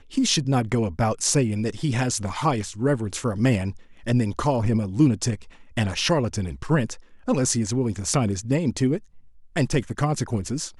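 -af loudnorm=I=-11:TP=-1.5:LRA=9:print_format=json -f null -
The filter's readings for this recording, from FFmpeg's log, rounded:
"input_i" : "-24.2",
"input_tp" : "-4.4",
"input_lra" : "2.1",
"input_thresh" : "-34.4",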